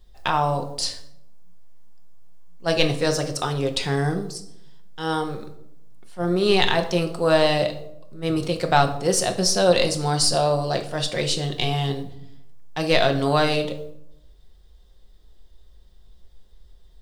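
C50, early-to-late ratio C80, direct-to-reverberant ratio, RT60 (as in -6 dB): 11.5 dB, 14.5 dB, 4.5 dB, 0.80 s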